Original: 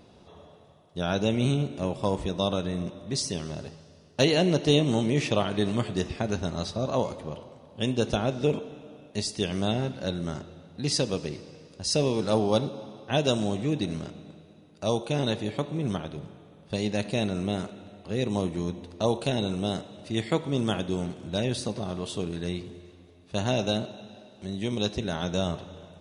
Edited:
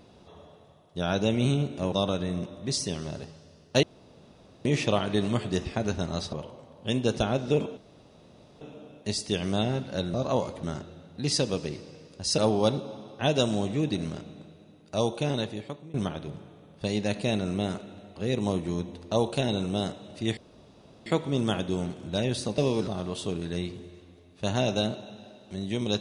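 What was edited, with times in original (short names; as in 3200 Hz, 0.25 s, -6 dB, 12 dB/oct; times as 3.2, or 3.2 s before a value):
1.92–2.36 cut
4.27–5.09 room tone
6.77–7.26 move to 10.23
8.7 insert room tone 0.84 s
11.98–12.27 move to 21.78
15.08–15.83 fade out, to -19.5 dB
20.26 insert room tone 0.69 s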